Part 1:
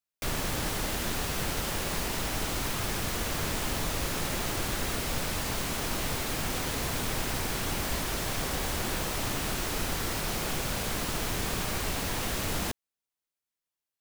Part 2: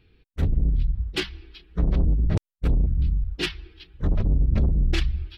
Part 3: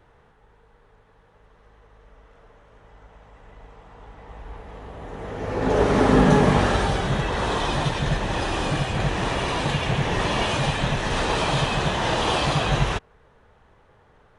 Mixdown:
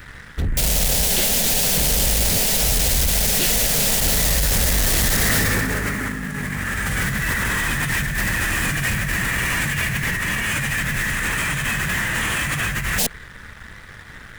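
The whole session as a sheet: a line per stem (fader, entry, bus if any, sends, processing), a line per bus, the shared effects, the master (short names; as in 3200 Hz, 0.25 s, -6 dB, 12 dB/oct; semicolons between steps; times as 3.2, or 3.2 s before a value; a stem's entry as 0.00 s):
-2.0 dB, 0.35 s, no send, fixed phaser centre 320 Hz, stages 6; tube stage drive 29 dB, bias 0.3
-12.0 dB, 0.00 s, no send, limiter -19 dBFS, peak gain reduction 8.5 dB
+1.5 dB, 0.00 s, no send, EQ curve 220 Hz 0 dB, 410 Hz -12 dB, 790 Hz -14 dB, 1900 Hz +10 dB, 4700 Hz -19 dB, 7400 Hz +2 dB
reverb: off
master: high shelf 4000 Hz +9.5 dB; negative-ratio compressor -30 dBFS, ratio -1; sample leveller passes 3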